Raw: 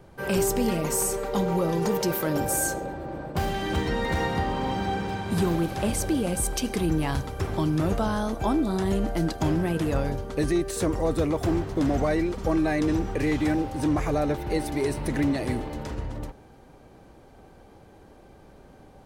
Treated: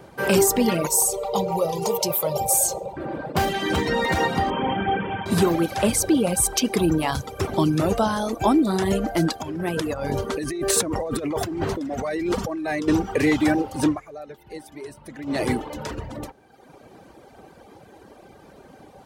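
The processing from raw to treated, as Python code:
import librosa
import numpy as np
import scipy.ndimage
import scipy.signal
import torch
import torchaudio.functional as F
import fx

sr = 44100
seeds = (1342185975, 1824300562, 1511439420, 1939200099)

y = fx.fixed_phaser(x, sr, hz=680.0, stages=4, at=(0.87, 2.97))
y = fx.brickwall_lowpass(y, sr, high_hz=3500.0, at=(4.5, 5.26))
y = fx.peak_eq(y, sr, hz=1700.0, db=-3.5, octaves=0.92, at=(5.99, 8.67))
y = fx.over_compress(y, sr, threshold_db=-30.0, ratio=-1.0, at=(9.4, 12.88))
y = fx.edit(y, sr, fx.fade_down_up(start_s=13.85, length_s=1.57, db=-17.0, fade_s=0.16), tone=tone)
y = fx.dereverb_blind(y, sr, rt60_s=1.1)
y = fx.highpass(y, sr, hz=200.0, slope=6)
y = y * librosa.db_to_amplitude(8.5)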